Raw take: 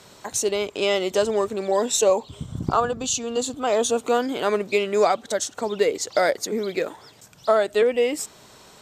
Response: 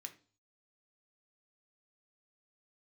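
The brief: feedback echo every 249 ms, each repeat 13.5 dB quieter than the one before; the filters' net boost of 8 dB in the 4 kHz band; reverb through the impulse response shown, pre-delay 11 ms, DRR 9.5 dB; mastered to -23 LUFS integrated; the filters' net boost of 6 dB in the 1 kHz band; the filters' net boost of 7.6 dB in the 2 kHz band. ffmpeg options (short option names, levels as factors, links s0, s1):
-filter_complex "[0:a]equalizer=f=1000:t=o:g=6.5,equalizer=f=2000:t=o:g=5.5,equalizer=f=4000:t=o:g=8,aecho=1:1:249|498:0.211|0.0444,asplit=2[s0][s1];[1:a]atrim=start_sample=2205,adelay=11[s2];[s1][s2]afir=irnorm=-1:irlink=0,volume=0.596[s3];[s0][s3]amix=inputs=2:normalize=0,volume=0.631"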